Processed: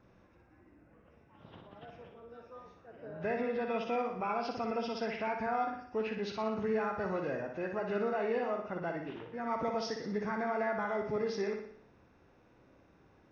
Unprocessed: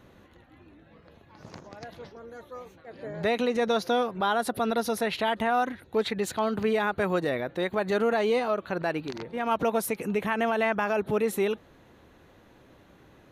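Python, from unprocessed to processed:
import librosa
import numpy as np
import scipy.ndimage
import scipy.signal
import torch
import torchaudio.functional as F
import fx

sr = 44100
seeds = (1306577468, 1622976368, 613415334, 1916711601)

y = fx.freq_compress(x, sr, knee_hz=1200.0, ratio=1.5)
y = fx.room_flutter(y, sr, wall_m=10.2, rt60_s=0.63)
y = y * librosa.db_to_amplitude(-9.0)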